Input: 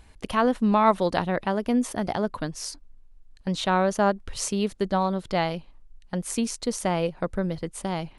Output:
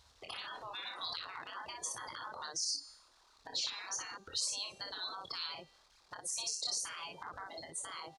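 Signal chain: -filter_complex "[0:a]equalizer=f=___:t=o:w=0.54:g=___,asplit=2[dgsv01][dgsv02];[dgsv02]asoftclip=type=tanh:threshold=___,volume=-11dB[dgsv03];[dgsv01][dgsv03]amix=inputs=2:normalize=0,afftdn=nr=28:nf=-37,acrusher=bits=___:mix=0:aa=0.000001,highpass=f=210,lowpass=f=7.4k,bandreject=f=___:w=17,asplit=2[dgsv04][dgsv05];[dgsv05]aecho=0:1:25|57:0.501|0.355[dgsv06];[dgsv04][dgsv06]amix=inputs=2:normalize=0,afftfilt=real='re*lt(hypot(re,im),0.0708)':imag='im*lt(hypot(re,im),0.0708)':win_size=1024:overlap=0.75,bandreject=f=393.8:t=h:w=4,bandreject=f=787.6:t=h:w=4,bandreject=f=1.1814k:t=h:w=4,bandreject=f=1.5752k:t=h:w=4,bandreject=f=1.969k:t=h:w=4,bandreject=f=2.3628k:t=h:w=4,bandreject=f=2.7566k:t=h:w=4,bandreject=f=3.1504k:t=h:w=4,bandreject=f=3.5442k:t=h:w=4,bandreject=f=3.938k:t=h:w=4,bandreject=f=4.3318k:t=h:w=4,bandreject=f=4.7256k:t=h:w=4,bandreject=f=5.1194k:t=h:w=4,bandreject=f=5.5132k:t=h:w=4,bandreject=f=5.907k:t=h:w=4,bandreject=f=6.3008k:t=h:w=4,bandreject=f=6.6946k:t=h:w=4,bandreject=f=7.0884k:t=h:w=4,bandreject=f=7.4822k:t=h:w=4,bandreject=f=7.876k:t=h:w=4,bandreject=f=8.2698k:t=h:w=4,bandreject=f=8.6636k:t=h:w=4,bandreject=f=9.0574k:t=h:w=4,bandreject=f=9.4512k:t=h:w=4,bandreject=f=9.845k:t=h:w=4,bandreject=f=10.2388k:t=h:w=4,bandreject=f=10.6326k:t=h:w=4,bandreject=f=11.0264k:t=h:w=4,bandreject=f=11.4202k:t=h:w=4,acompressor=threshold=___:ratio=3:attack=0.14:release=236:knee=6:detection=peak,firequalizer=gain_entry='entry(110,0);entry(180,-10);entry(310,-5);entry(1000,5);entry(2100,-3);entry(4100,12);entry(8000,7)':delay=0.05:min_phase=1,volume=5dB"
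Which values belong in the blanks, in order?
460, 3, -23dB, 11, 3k, -48dB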